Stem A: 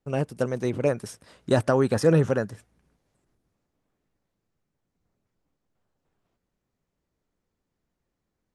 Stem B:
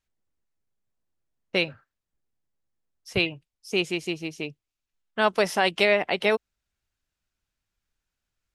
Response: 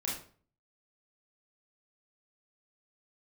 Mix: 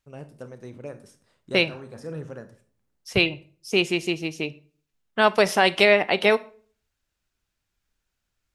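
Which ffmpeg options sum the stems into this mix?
-filter_complex "[0:a]volume=-16dB,asplit=2[link_01][link_02];[link_02]volume=-10.5dB[link_03];[1:a]volume=3dB,asplit=3[link_04][link_05][link_06];[link_05]volume=-18.5dB[link_07];[link_06]apad=whole_len=377043[link_08];[link_01][link_08]sidechaincompress=threshold=-29dB:ratio=3:attack=32:release=730[link_09];[2:a]atrim=start_sample=2205[link_10];[link_03][link_07]amix=inputs=2:normalize=0[link_11];[link_11][link_10]afir=irnorm=-1:irlink=0[link_12];[link_09][link_04][link_12]amix=inputs=3:normalize=0"

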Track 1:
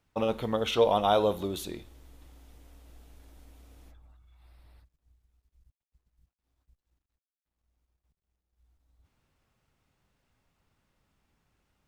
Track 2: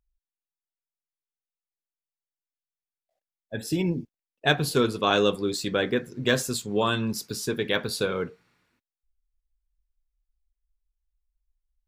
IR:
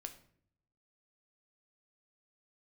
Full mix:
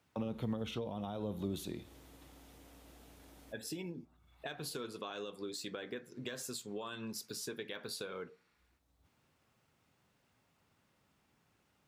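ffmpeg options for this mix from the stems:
-filter_complex "[0:a]highpass=110,alimiter=limit=-19dB:level=0:latency=1:release=86,acrossover=split=240[link_01][link_02];[link_02]acompressor=threshold=-45dB:ratio=8[link_03];[link_01][link_03]amix=inputs=2:normalize=0,volume=2dB[link_04];[1:a]highpass=frequency=300:poles=1,alimiter=limit=-17dB:level=0:latency=1:release=139,acompressor=threshold=-33dB:ratio=6,volume=-7.5dB,asplit=3[link_05][link_06][link_07];[link_06]volume=-13dB[link_08];[link_07]apad=whole_len=523645[link_09];[link_04][link_09]sidechaincompress=threshold=-57dB:ratio=8:attack=16:release=271[link_10];[2:a]atrim=start_sample=2205[link_11];[link_08][link_11]afir=irnorm=-1:irlink=0[link_12];[link_10][link_05][link_12]amix=inputs=3:normalize=0"

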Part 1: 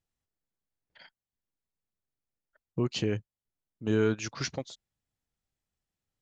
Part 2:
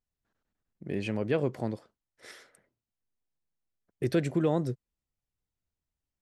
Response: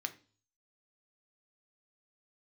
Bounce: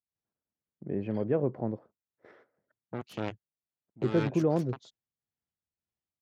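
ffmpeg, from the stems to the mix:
-filter_complex "[0:a]lowpass=frequency=3900:poles=1,aeval=exprs='0.178*(cos(1*acos(clip(val(0)/0.178,-1,1)))-cos(1*PI/2))+0.0447*(cos(7*acos(clip(val(0)/0.178,-1,1)))-cos(7*PI/2))':channel_layout=same,tremolo=f=1.9:d=0.59,adelay=150,volume=-3dB[link_01];[1:a]agate=range=-10dB:threshold=-53dB:ratio=16:detection=peak,lowpass=1000,volume=0.5dB[link_02];[link_01][link_02]amix=inputs=2:normalize=0,highpass=88"

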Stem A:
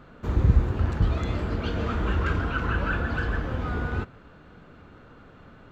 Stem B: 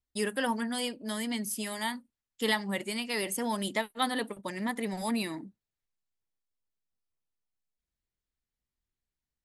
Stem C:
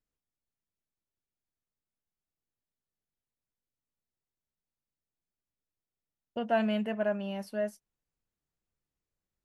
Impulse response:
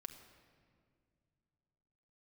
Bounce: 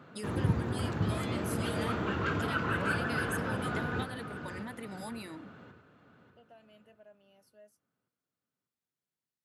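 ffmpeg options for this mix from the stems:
-filter_complex "[0:a]volume=-3dB,asplit=2[link_01][link_02];[link_02]volume=-9dB[link_03];[1:a]acompressor=threshold=-37dB:ratio=6,volume=-3dB[link_04];[2:a]highpass=510,equalizer=frequency=1300:width=0.42:gain=-14,alimiter=level_in=8.5dB:limit=-24dB:level=0:latency=1:release=239,volume=-8.5dB,volume=-14.5dB[link_05];[link_03]aecho=0:1:592|1184|1776|2368|2960|3552:1|0.4|0.16|0.064|0.0256|0.0102[link_06];[link_01][link_04][link_05][link_06]amix=inputs=4:normalize=0,highpass=frequency=110:width=0.5412,highpass=frequency=110:width=1.3066"

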